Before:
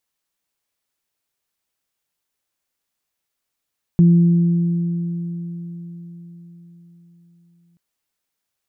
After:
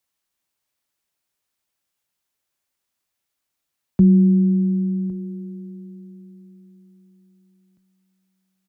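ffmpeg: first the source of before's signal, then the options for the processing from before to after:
-f lavfi -i "aevalsrc='0.422*pow(10,-3*t/4.75)*sin(2*PI*171*t)+0.0668*pow(10,-3*t/4.21)*sin(2*PI*342*t)':d=3.78:s=44100"
-af "bandreject=f=440:w=12,afreqshift=18,aecho=1:1:1108:0.1"

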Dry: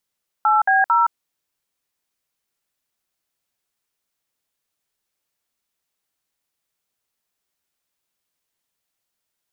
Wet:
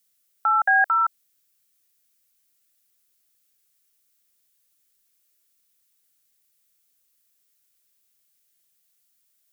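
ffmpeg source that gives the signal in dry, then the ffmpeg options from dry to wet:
-f lavfi -i "aevalsrc='0.168*clip(min(mod(t,0.224),0.168-mod(t,0.224))/0.002,0,1)*(eq(floor(t/0.224),0)*(sin(2*PI*852*mod(t,0.224))+sin(2*PI*1336*mod(t,0.224)))+eq(floor(t/0.224),1)*(sin(2*PI*770*mod(t,0.224))+sin(2*PI*1633*mod(t,0.224)))+eq(floor(t/0.224),2)*(sin(2*PI*941*mod(t,0.224))+sin(2*PI*1336*mod(t,0.224))))':d=0.672:s=44100"
-filter_complex "[0:a]equalizer=f=930:w=4:g=-14,acrossover=split=830[s0][s1];[s1]crystalizer=i=2:c=0[s2];[s0][s2]amix=inputs=2:normalize=0"

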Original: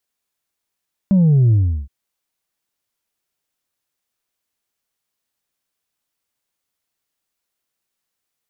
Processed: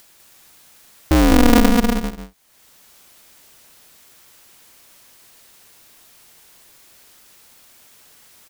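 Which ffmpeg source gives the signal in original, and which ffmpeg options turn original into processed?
-f lavfi -i "aevalsrc='0.316*clip((0.77-t)/0.36,0,1)*tanh(1.26*sin(2*PI*200*0.77/log(65/200)*(exp(log(65/200)*t/0.77)-1)))/tanh(1.26)':d=0.77:s=44100"
-af "acompressor=mode=upward:threshold=0.0355:ratio=2.5,aecho=1:1:200|320|392|435.2|461.1:0.631|0.398|0.251|0.158|0.1,aeval=exprs='val(0)*sgn(sin(2*PI*120*n/s))':c=same"

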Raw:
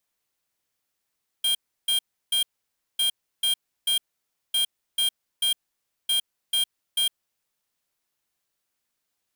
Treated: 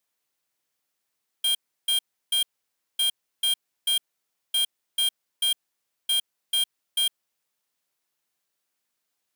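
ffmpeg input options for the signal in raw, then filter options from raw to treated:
-f lavfi -i "aevalsrc='0.075*(2*lt(mod(3210*t,1),0.5)-1)*clip(min(mod(mod(t,1.55),0.44),0.11-mod(mod(t,1.55),0.44))/0.005,0,1)*lt(mod(t,1.55),1.32)':d=6.2:s=44100"
-af "highpass=f=160:p=1"

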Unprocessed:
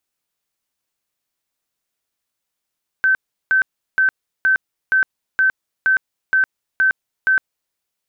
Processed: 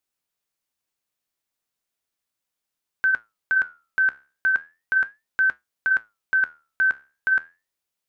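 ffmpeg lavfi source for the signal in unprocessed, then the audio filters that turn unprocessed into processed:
-f lavfi -i "aevalsrc='0.266*sin(2*PI*1540*mod(t,0.47))*lt(mod(t,0.47),168/1540)':d=4.7:s=44100"
-af "flanger=delay=7.1:depth=7.3:regen=-76:speed=0.36:shape=sinusoidal"

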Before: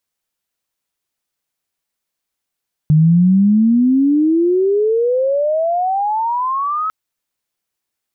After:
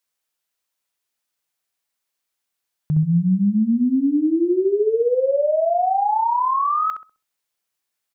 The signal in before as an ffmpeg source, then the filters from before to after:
-f lavfi -i "aevalsrc='pow(10,(-7-9.5*t/4)/20)*sin(2*PI*150*4/log(1300/150)*(exp(log(1300/150)*t/4)-1))':d=4:s=44100"
-filter_complex "[0:a]lowshelf=f=460:g=-9.5,asplit=2[s0][s1];[s1]adelay=65,lowpass=f=870:p=1,volume=0.631,asplit=2[s2][s3];[s3]adelay=65,lowpass=f=870:p=1,volume=0.38,asplit=2[s4][s5];[s5]adelay=65,lowpass=f=870:p=1,volume=0.38,asplit=2[s6][s7];[s7]adelay=65,lowpass=f=870:p=1,volume=0.38,asplit=2[s8][s9];[s9]adelay=65,lowpass=f=870:p=1,volume=0.38[s10];[s2][s4][s6][s8][s10]amix=inputs=5:normalize=0[s11];[s0][s11]amix=inputs=2:normalize=0"

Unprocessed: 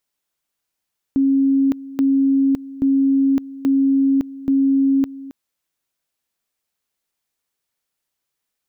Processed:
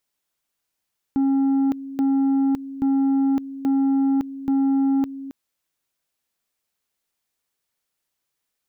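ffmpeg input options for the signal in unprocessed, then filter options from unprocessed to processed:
-f lavfi -i "aevalsrc='pow(10,(-12.5-18*gte(mod(t,0.83),0.56))/20)*sin(2*PI*272*t)':d=4.15:s=44100"
-af "asoftclip=type=tanh:threshold=0.15"

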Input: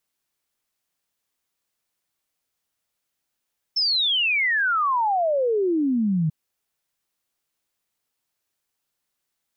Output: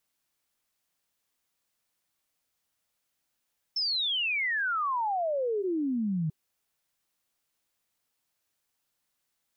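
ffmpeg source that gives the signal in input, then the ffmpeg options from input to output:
-f lavfi -i "aevalsrc='0.119*clip(min(t,2.54-t)/0.01,0,1)*sin(2*PI*5400*2.54/log(150/5400)*(exp(log(150/5400)*t/2.54)-1))':d=2.54:s=44100"
-af "bandreject=f=390:w=12,alimiter=level_in=1.26:limit=0.0631:level=0:latency=1:release=13,volume=0.794"

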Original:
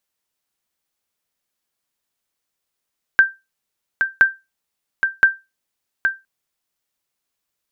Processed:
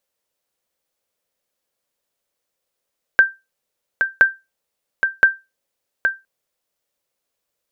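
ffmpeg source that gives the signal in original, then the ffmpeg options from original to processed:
-f lavfi -i "aevalsrc='0.708*(sin(2*PI*1570*mod(t,1.02))*exp(-6.91*mod(t,1.02)/0.22)+0.473*sin(2*PI*1570*max(mod(t,1.02)-0.82,0))*exp(-6.91*max(mod(t,1.02)-0.82,0)/0.22))':d=3.06:s=44100"
-af "equalizer=f=530:t=o:w=0.6:g=11"

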